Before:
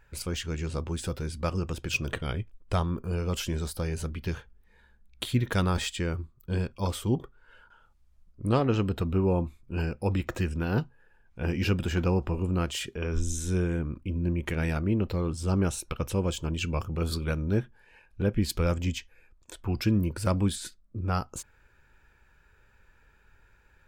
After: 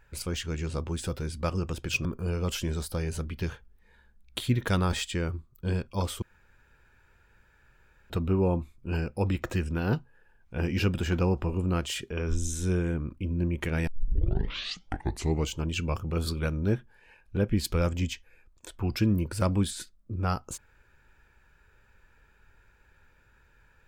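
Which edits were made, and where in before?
2.05–2.9 cut
7.07–8.95 room tone
14.72 tape start 1.75 s

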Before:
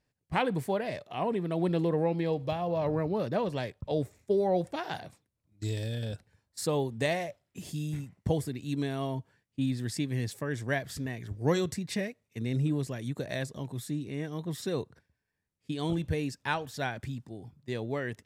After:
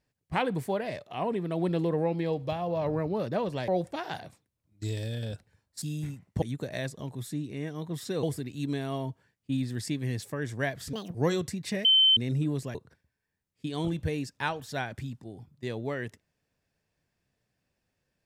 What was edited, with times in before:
3.68–4.48 cut
6.62–7.72 cut
11.02–11.39 speed 170%
12.09–12.41 bleep 3080 Hz -17 dBFS
12.99–14.8 move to 8.32

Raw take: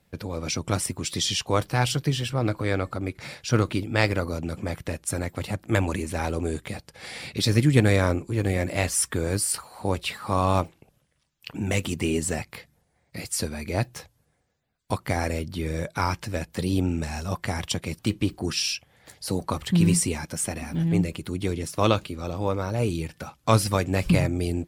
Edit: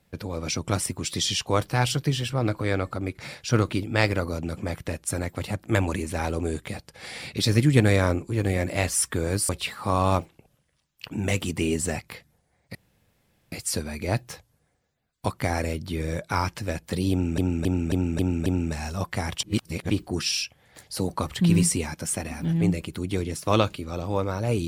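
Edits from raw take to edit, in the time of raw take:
9.49–9.92 cut
13.18 insert room tone 0.77 s
16.77–17.04 loop, 6 plays
17.74–18.21 reverse

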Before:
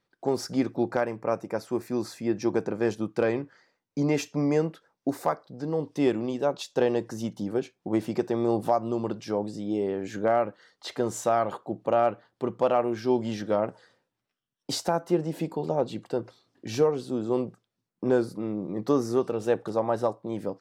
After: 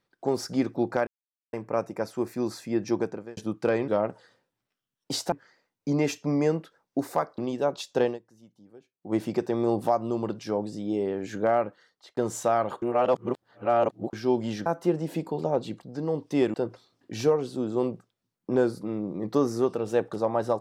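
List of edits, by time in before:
1.07 insert silence 0.46 s
2.48–2.91 fade out
5.48–6.19 move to 16.08
6.85–7.97 dip -23 dB, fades 0.15 s
10.44–10.98 fade out
11.63–12.94 reverse
13.47–14.91 move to 3.42

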